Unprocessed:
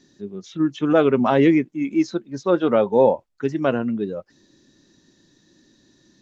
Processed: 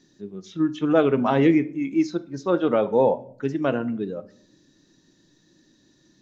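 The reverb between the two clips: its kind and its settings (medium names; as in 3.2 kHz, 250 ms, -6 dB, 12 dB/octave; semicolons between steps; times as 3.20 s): simulated room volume 810 m³, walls furnished, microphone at 0.55 m; trim -3 dB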